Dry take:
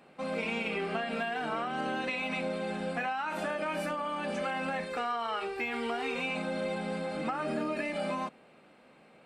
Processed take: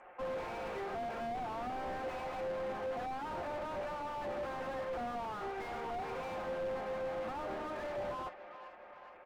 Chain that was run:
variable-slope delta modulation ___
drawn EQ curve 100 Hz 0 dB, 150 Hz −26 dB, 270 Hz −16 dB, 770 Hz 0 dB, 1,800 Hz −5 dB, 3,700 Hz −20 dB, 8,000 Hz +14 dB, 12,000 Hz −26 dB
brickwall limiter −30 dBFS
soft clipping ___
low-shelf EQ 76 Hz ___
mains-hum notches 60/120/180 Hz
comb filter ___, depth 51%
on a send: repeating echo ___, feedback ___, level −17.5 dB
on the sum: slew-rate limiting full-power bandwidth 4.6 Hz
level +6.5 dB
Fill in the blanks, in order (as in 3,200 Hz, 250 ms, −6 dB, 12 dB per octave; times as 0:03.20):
16 kbit/s, −38.5 dBFS, −11.5 dB, 5.6 ms, 417 ms, 56%